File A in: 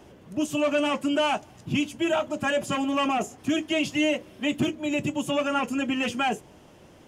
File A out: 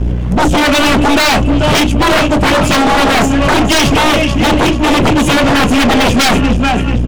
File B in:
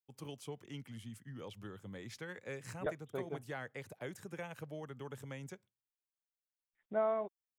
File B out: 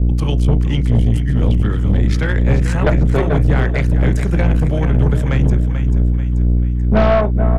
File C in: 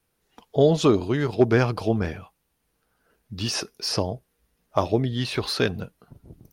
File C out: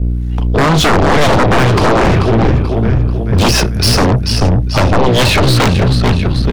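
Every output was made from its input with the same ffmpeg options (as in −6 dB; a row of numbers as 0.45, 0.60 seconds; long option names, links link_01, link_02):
-filter_complex "[0:a]aecho=1:1:437|874|1311|1748|2185:0.316|0.145|0.0669|0.0308|0.0142,acrossover=split=140|2500[link_01][link_02][link_03];[link_01]asoftclip=type=tanh:threshold=-32dB[link_04];[link_02]asplit=2[link_05][link_06];[link_06]adelay=33,volume=-10.5dB[link_07];[link_05][link_07]amix=inputs=2:normalize=0[link_08];[link_03]lowpass=11000[link_09];[link_04][link_08][link_09]amix=inputs=3:normalize=0,alimiter=limit=-14.5dB:level=0:latency=1:release=244,aeval=exprs='val(0)+0.00562*(sin(2*PI*60*n/s)+sin(2*PI*2*60*n/s)/2+sin(2*PI*3*60*n/s)/3+sin(2*PI*4*60*n/s)/4+sin(2*PI*5*60*n/s)/5)':channel_layout=same,bass=frequency=250:gain=13,treble=frequency=4000:gain=-11,acrossover=split=470[link_10][link_11];[link_10]aeval=exprs='val(0)*(1-0.5/2+0.5/2*cos(2*PI*2*n/s))':channel_layout=same[link_12];[link_11]aeval=exprs='val(0)*(1-0.5/2-0.5/2*cos(2*PI*2*n/s))':channel_layout=same[link_13];[link_12][link_13]amix=inputs=2:normalize=0,highshelf=frequency=2800:gain=7.5,aeval=exprs='0.376*sin(PI/2*6.31*val(0)/0.376)':channel_layout=same,aeval=exprs='0.398*(cos(1*acos(clip(val(0)/0.398,-1,1)))-cos(1*PI/2))+0.0708*(cos(4*acos(clip(val(0)/0.398,-1,1)))-cos(4*PI/2))+0.0178*(cos(5*acos(clip(val(0)/0.398,-1,1)))-cos(5*PI/2))+0.0224*(cos(6*acos(clip(val(0)/0.398,-1,1)))-cos(6*PI/2))':channel_layout=same,volume=2dB"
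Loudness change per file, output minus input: +16.5, +27.5, +12.5 LU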